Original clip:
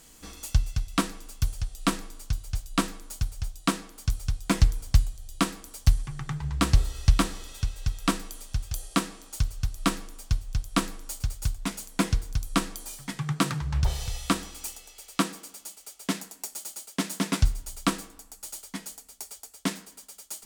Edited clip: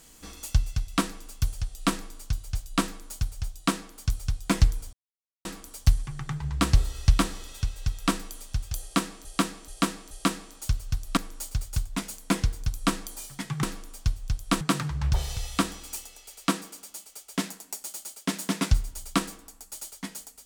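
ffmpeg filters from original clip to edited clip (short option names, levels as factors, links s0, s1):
-filter_complex "[0:a]asplit=9[s0][s1][s2][s3][s4][s5][s6][s7][s8];[s0]atrim=end=4.93,asetpts=PTS-STARTPTS,afade=t=out:st=4.926:d=0.004:c=hsin[s9];[s1]atrim=start=4.93:end=5.45,asetpts=PTS-STARTPTS,volume=0[s10];[s2]atrim=start=5.45:end=9.252,asetpts=PTS-STARTPTS,afade=t=in:d=0.004:c=hsin[s11];[s3]atrim=start=8.818:end=9.252[s12];[s4]atrim=start=8.818:end=9.252[s13];[s5]atrim=start=8.818:end=9.882[s14];[s6]atrim=start=10.858:end=13.322[s15];[s7]atrim=start=9.878:end=10.862[s16];[s8]atrim=start=13.318[s17];[s9][s10][s11]concat=n=3:v=0:a=1[s18];[s18][s12]acrossfade=d=0.004:c1=hsin:c2=hsin[s19];[s19][s13]acrossfade=d=0.004:c1=hsin:c2=hsin[s20];[s20][s14]acrossfade=d=0.004:c1=hsin:c2=hsin[s21];[s21][s15]acrossfade=d=0.004:c1=hsin:c2=hsin[s22];[s22][s16]acrossfade=d=0.004:c1=hsin:c2=hsin[s23];[s23][s17]acrossfade=d=0.004:c1=hsin:c2=hsin"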